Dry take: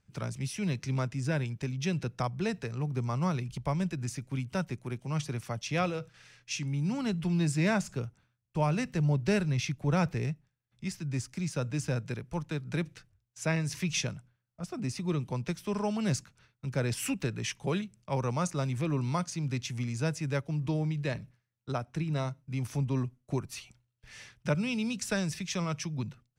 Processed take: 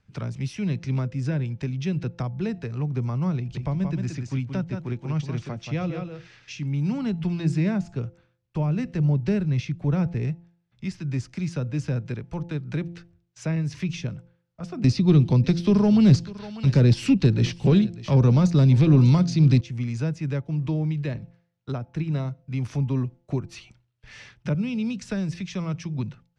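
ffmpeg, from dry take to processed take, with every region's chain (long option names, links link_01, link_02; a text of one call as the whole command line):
ffmpeg -i in.wav -filter_complex "[0:a]asettb=1/sr,asplit=3[link_01][link_02][link_03];[link_01]atrim=end=3.374[link_04];[link_02]atrim=start=3.37:end=6.66,asetpts=PTS-STARTPTS,afade=type=in:duration=0.004:curve=qsin,afade=type=out:start_time=3.286:duration=0.004:curve=qsin,lowpass=frequency=8100:width=0.5412,lowpass=frequency=8100:width=1.3066,aecho=1:1:176:0.447,atrim=end_sample=145089[link_05];[link_03]atrim=start=6.656[link_06];[link_04][link_05]acrossfade=duration=0.004:curve1=hsin:curve2=qsin[link_07];[link_07][link_06]acrossfade=duration=0.004:curve1=qsin:curve2=hsin,asettb=1/sr,asplit=3[link_08][link_09][link_10];[link_08]atrim=end=14.844[link_11];[link_09]atrim=start=14.84:end=19.61,asetpts=PTS-STARTPTS,afade=type=in:duration=0.004:curve=qsin,afade=type=out:start_time=4.766:duration=0.004:curve=qsin,equalizer=frequency=4300:width_type=o:width=0.93:gain=12,aeval=exprs='0.2*sin(PI/2*2.24*val(0)/0.2)':channel_layout=same,aecho=1:1:596:0.1,atrim=end_sample=210357[link_12];[link_10]atrim=start=19.606[link_13];[link_11][link_12]acrossfade=duration=0.004:curve1=hsin:curve2=qsin[link_14];[link_14][link_13]acrossfade=duration=0.004:curve1=qsin:curve2=hsin,lowpass=4700,bandreject=frequency=171.5:width_type=h:width=4,bandreject=frequency=343:width_type=h:width=4,bandreject=frequency=514.5:width_type=h:width=4,bandreject=frequency=686:width_type=h:width=4,bandreject=frequency=857.5:width_type=h:width=4,acrossover=split=390[link_15][link_16];[link_16]acompressor=threshold=-47dB:ratio=2.5[link_17];[link_15][link_17]amix=inputs=2:normalize=0,volume=6dB" out.wav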